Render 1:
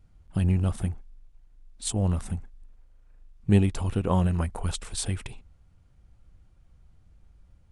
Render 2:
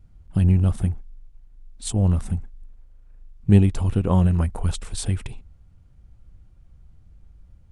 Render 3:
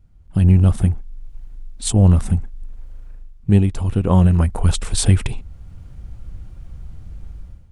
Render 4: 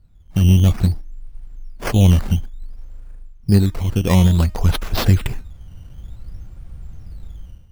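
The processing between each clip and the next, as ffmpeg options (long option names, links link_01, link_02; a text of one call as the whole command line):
ffmpeg -i in.wav -af "lowshelf=frequency=320:gain=7" out.wav
ffmpeg -i in.wav -af "dynaudnorm=framelen=110:gausssize=7:maxgain=16dB,volume=-1dB" out.wav
ffmpeg -i in.wav -af "bandreject=frequency=309.3:width_type=h:width=4,bandreject=frequency=618.6:width_type=h:width=4,bandreject=frequency=927.9:width_type=h:width=4,bandreject=frequency=1237.2:width_type=h:width=4,bandreject=frequency=1546.5:width_type=h:width=4,bandreject=frequency=1855.8:width_type=h:width=4,bandreject=frequency=2165.1:width_type=h:width=4,bandreject=frequency=2474.4:width_type=h:width=4,bandreject=frequency=2783.7:width_type=h:width=4,acrusher=samples=10:mix=1:aa=0.000001:lfo=1:lforange=10:lforate=0.56" out.wav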